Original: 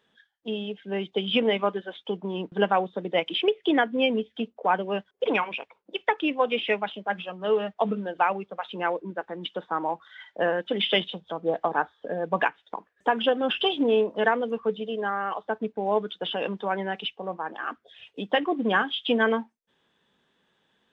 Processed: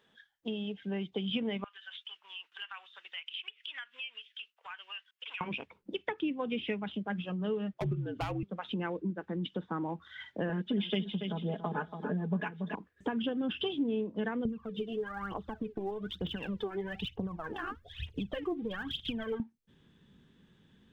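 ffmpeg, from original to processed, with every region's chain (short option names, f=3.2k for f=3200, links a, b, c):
-filter_complex "[0:a]asettb=1/sr,asplit=3[a][b][c];[a]atrim=end=1.644[d];[b]atrim=start=1.64:end=5.41,asetpts=PTS-STARTPTS,afade=t=in:d=0.004:c=qsin,afade=t=out:st=3.766:d=0.004:c=qsin,highpass=f=1.3k:w=0.5412,highpass=f=1.3k:w=1.3066,equalizer=f=2.8k:t=o:w=0.32:g=9,acompressor=threshold=-42dB:ratio=3:attack=3.2:release=140:knee=1:detection=peak[e];[c]atrim=start=5.406[f];[d][e]acrossfade=d=0.004:c1=hsin:c2=qsin[g];[g][f]acrossfade=d=0.004:c1=qsin:c2=hsin,asettb=1/sr,asplit=3[h][i][j];[h]atrim=end=7.734[k];[i]atrim=start=7.73:end=8.43,asetpts=PTS-STARTPTS,afade=t=in:d=0.004:c=qsin,afade=t=out:st=0.696:d=0.004:c=qsin,highpass=f=240:w=0.5412,highpass=f=240:w=1.3066,asoftclip=type=hard:threshold=-20dB,afreqshift=-61[l];[j]atrim=start=8.426[m];[k][l]acrossfade=d=0.004:c1=hsin:c2=qsin[n];[n][m]acrossfade=d=0.004:c1=qsin:c2=hsin,asettb=1/sr,asplit=3[o][p][q];[o]atrim=end=10.494[r];[p]atrim=start=10.49:end=12.75,asetpts=PTS-STARTPTS,afade=t=in:d=0.004:c=qsin,afade=t=out:st=2.256:d=0.004:c=qsin,aecho=1:1:4.8:0.92,atrim=end_sample=99666,aecho=1:1:282|564|846:0.237|0.0688|0.0199,atrim=end_sample=99666[s];[q]atrim=start=12.746[t];[r][s]acrossfade=d=0.004:c1=hsin:c2=qsin[u];[u][t]acrossfade=d=0.004:c1=qsin:c2=hsin,asettb=1/sr,asplit=3[v][w][x];[v]atrim=end=14.454[y];[w]atrim=start=14.45:end=19.4,asetpts=PTS-STARTPTS,afade=t=in:d=0.004:c=qsin,afade=t=out:st=4.946:d=0.004:c=qsin,asubboost=boost=10.5:cutoff=71,acompressor=threshold=-33dB:ratio=4:attack=3.2:release=140:knee=1:detection=peak,aphaser=in_gain=1:out_gain=1:delay=3:decay=0.75:speed=1.1:type=triangular[z];[x]atrim=start=19.396[aa];[y][z]acrossfade=d=0.004:c1=hsin:c2=qsin[ab];[ab][aa]acrossfade=d=0.004:c1=qsin:c2=hsin,asubboost=boost=10:cutoff=210,acompressor=threshold=-35dB:ratio=3"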